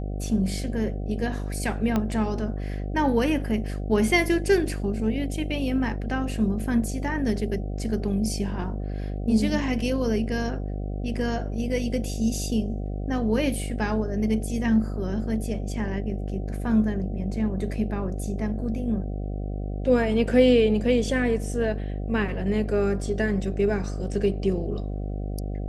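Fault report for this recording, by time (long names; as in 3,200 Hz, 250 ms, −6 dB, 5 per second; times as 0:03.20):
mains buzz 50 Hz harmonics 15 −30 dBFS
0:01.96: click −12 dBFS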